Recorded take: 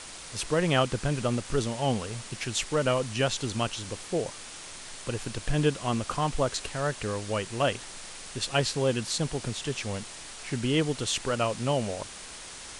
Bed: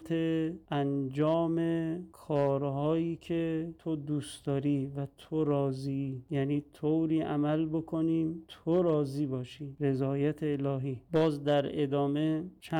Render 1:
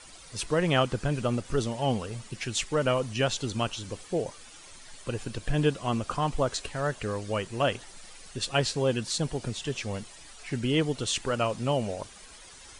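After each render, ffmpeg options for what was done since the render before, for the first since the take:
-af "afftdn=nr=11:nf=-43"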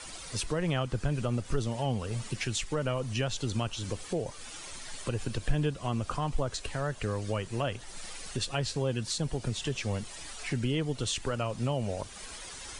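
-filter_complex "[0:a]acrossover=split=120[a][b];[b]acompressor=threshold=-40dB:ratio=2[c];[a][c]amix=inputs=2:normalize=0,asplit=2[d][e];[e]alimiter=level_in=4dB:limit=-24dB:level=0:latency=1:release=228,volume=-4dB,volume=-1dB[f];[d][f]amix=inputs=2:normalize=0"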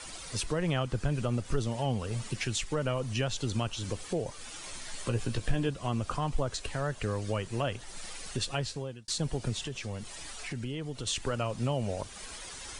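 -filter_complex "[0:a]asettb=1/sr,asplit=3[a][b][c];[a]atrim=end=4.624[d];[b]atrim=start=4.62:end=5.69,asetpts=PTS-STARTPTS,afade=t=in:d=0.004:c=qsin,afade=t=out:st=1.066:d=0.004:c=qsin,asplit=2[e][f];[f]adelay=17,volume=-7dB[g];[e][g]amix=inputs=2:normalize=0,atrim=end_sample=47187[h];[c]atrim=start=5.686[i];[d][h]acrossfade=d=0.004:c1=hsin:c2=qsin[j];[j][i]acrossfade=d=0.004:c1=qsin:c2=hsin,asettb=1/sr,asplit=3[k][l][m];[k]atrim=end=9.624[n];[l]atrim=start=9.62:end=11.07,asetpts=PTS-STARTPTS,afade=t=in:d=0.004:c=qsin,afade=t=out:st=1.446:d=0.004:c=qsin,acompressor=threshold=-37dB:ratio=2:attack=3.2:release=140:knee=1:detection=peak[o];[m]atrim=start=11.066[p];[n][o]acrossfade=d=0.004:c1=hsin:c2=qsin[q];[q][p]acrossfade=d=0.004:c1=qsin:c2=hsin,asplit=2[r][s];[r]atrim=end=9.08,asetpts=PTS-STARTPTS,afade=t=out:st=8.51:d=0.57[t];[s]atrim=start=9.08,asetpts=PTS-STARTPTS,afade=t=in:d=0.004:c=hsin[u];[t][u]concat=n=2:v=0:a=1"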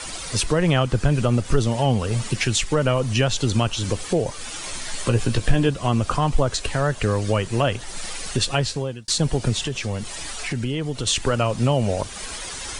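-af "volume=11dB"

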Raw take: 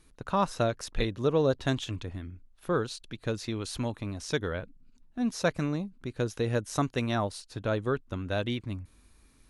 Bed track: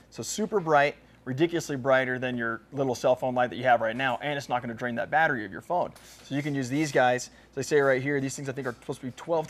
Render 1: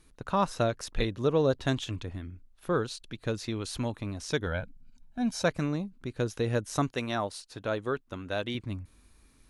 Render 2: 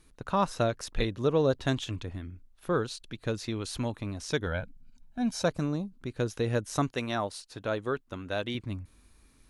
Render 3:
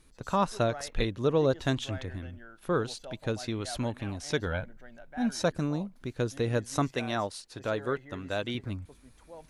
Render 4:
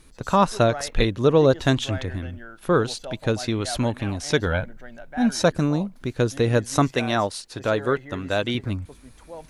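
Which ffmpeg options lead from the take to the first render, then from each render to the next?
-filter_complex "[0:a]asettb=1/sr,asplit=3[a][b][c];[a]atrim=end=4.464[d];[b]atrim=start=4.46:end=5.44,asetpts=PTS-STARTPTS,afade=t=in:d=0.004:c=qsin,afade=t=out:st=0.976:d=0.004:c=qsin,aecho=1:1:1.3:0.65,atrim=end_sample=43218[e];[c]atrim=start=5.436[f];[d][e]acrossfade=d=0.004:c1=hsin:c2=qsin[g];[g][f]acrossfade=d=0.004:c1=qsin:c2=hsin,asettb=1/sr,asplit=3[h][i][j];[h]atrim=end=6.914[k];[i]atrim=start=6.91:end=8.55,asetpts=PTS-STARTPTS,afade=t=in:d=0.004:c=qsin,afade=t=out:st=1.636:d=0.004:c=qsin,lowshelf=f=190:g=-10[l];[j]atrim=start=8.546[m];[k][l]acrossfade=d=0.004:c1=hsin:c2=qsin[n];[n][m]acrossfade=d=0.004:c1=qsin:c2=hsin"
-filter_complex "[0:a]asettb=1/sr,asplit=3[a][b][c];[a]atrim=end=5.454[d];[b]atrim=start=5.45:end=6.01,asetpts=PTS-STARTPTS,afade=t=in:d=0.004:c=qsin,afade=t=out:st=0.556:d=0.004:c=qsin,equalizer=f=2.1k:t=o:w=0.81:g=-9[e];[c]atrim=start=6.006[f];[d][e]acrossfade=d=0.004:c1=hsin:c2=qsin[g];[g][f]acrossfade=d=0.004:c1=qsin:c2=hsin"
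-filter_complex "[1:a]volume=-21dB[a];[0:a][a]amix=inputs=2:normalize=0"
-af "volume=8.5dB"

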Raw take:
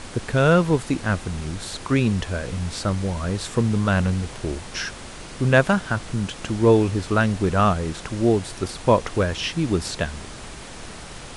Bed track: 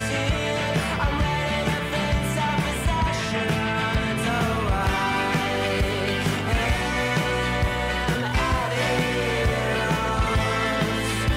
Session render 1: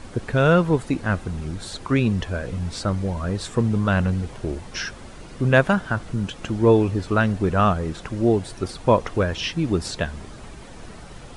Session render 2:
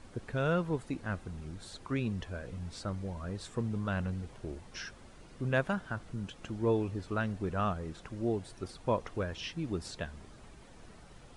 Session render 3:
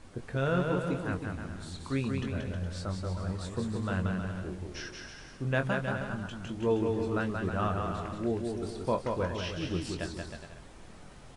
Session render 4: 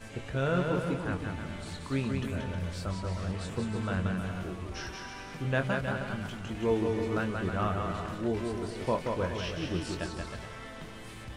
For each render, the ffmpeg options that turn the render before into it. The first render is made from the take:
-af "afftdn=nr=9:nf=-38"
-af "volume=-13.5dB"
-filter_complex "[0:a]asplit=2[a][b];[b]adelay=22,volume=-8dB[c];[a][c]amix=inputs=2:normalize=0,aecho=1:1:180|315|416.2|492.2|549.1:0.631|0.398|0.251|0.158|0.1"
-filter_complex "[1:a]volume=-21.5dB[a];[0:a][a]amix=inputs=2:normalize=0"

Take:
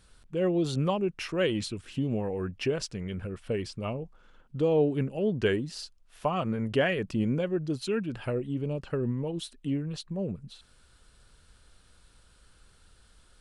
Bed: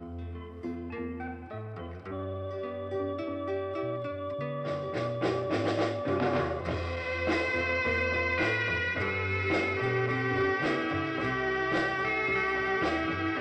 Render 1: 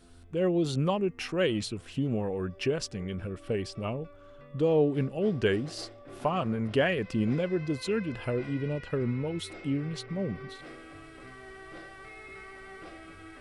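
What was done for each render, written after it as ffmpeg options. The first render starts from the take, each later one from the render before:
-filter_complex "[1:a]volume=-17.5dB[a];[0:a][a]amix=inputs=2:normalize=0"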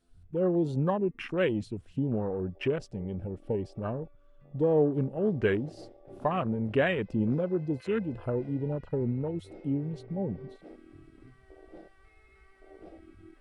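-af "afwtdn=0.0126"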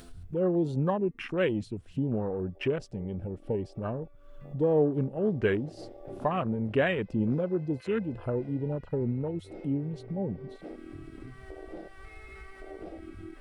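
-af "acompressor=mode=upward:threshold=-33dB:ratio=2.5"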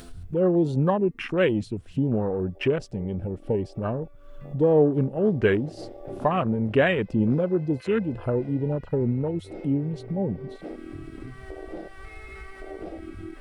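-af "volume=5.5dB"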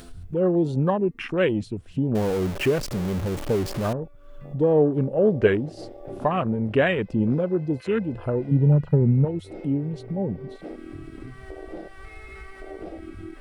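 -filter_complex "[0:a]asettb=1/sr,asplit=3[a][b][c];[a]atrim=end=2.154[d];[b]atrim=start=2.15:end=3.93,asetpts=PTS-STARTPTS,afade=t=in:d=0.004:c=qsin,afade=t=out:st=1.776:d=0.004:c=qsin,aeval=exprs='val(0)+0.5*0.0422*sgn(val(0))':c=same[e];[c]atrim=start=3.926[f];[d][e]acrossfade=d=0.004:c1=hsin:c2=qsin[g];[g][f]acrossfade=d=0.004:c1=qsin:c2=hsin,asettb=1/sr,asplit=3[h][i][j];[h]atrim=end=5.074[k];[i]atrim=start=5.07:end=5.47,asetpts=PTS-STARTPTS,afade=t=in:d=0.004:c=qsin,afade=t=out:st=0.396:d=0.004:c=qsin,equalizer=f=540:t=o:w=0.49:g=10.5[l];[j]atrim=start=5.466[m];[k][l]acrossfade=d=0.004:c1=hsin:c2=qsin[n];[n][m]acrossfade=d=0.004:c1=qsin:c2=hsin,asettb=1/sr,asplit=3[o][p][q];[o]atrim=end=8.514[r];[p]atrim=start=8.51:end=9.25,asetpts=PTS-STARTPTS,afade=t=in:d=0.004:c=qsin,afade=t=out:st=0.736:d=0.004:c=qsin,equalizer=f=150:t=o:w=0.77:g=12.5[s];[q]atrim=start=9.246[t];[r][s]acrossfade=d=0.004:c1=hsin:c2=qsin[u];[u][t]acrossfade=d=0.004:c1=qsin:c2=hsin"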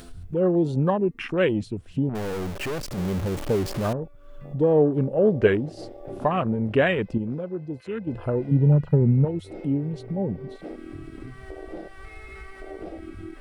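-filter_complex "[0:a]asettb=1/sr,asplit=3[a][b][c];[a]atrim=end=2.094[d];[b]atrim=start=2.09:end=2.98,asetpts=PTS-STARTPTS,afade=t=in:d=0.004:c=qsin,afade=t=out:st=0.886:d=0.004:c=qsin,aeval=exprs='(tanh(22.4*val(0)+0.5)-tanh(0.5))/22.4':c=same[e];[c]atrim=start=2.976[f];[d][e]acrossfade=d=0.004:c1=hsin:c2=qsin[g];[g][f]acrossfade=d=0.004:c1=qsin:c2=hsin,asplit=3[h][i][j];[h]atrim=end=7.182[k];[i]atrim=start=7.178:end=8.072,asetpts=PTS-STARTPTS,volume=-7.5dB[l];[j]atrim=start=8.068[m];[k][l]acrossfade=d=0.004:c1=hsin:c2=hsin[n];[n][m]acrossfade=d=0.004:c1=hsin:c2=hsin"

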